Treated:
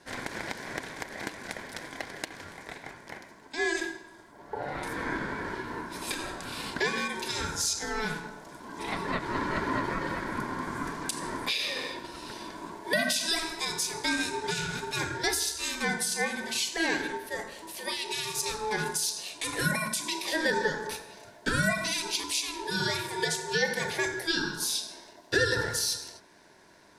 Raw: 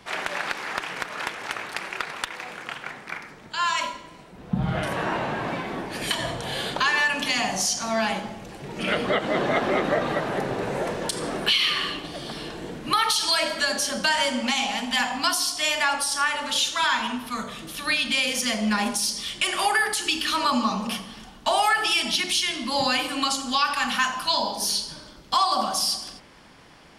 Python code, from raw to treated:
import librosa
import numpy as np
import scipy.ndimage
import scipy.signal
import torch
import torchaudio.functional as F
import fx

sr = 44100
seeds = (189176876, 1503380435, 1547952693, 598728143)

y = fx.fixed_phaser(x, sr, hz=580.0, stages=6)
y = y * np.sin(2.0 * np.pi * 650.0 * np.arange(len(y)) / sr)